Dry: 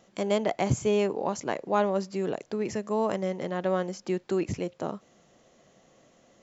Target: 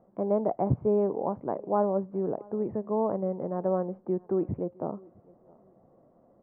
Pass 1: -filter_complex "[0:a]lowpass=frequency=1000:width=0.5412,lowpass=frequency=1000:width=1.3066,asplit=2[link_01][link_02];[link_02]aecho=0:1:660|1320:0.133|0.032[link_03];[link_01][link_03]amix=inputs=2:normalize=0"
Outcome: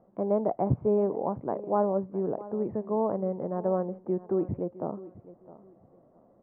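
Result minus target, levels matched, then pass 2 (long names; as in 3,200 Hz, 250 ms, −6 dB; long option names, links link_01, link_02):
echo-to-direct +8 dB
-filter_complex "[0:a]lowpass=frequency=1000:width=0.5412,lowpass=frequency=1000:width=1.3066,asplit=2[link_01][link_02];[link_02]aecho=0:1:660|1320:0.0531|0.0127[link_03];[link_01][link_03]amix=inputs=2:normalize=0"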